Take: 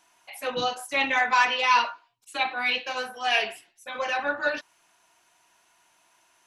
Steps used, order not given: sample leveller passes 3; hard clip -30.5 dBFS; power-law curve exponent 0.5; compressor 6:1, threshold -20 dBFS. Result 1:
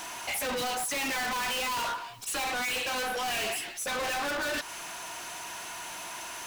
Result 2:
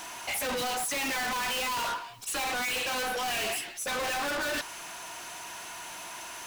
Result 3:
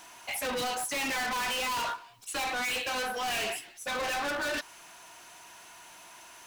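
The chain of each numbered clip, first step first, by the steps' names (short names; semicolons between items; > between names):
sample leveller > power-law curve > compressor > hard clip; compressor > sample leveller > power-law curve > hard clip; sample leveller > compressor > hard clip > power-law curve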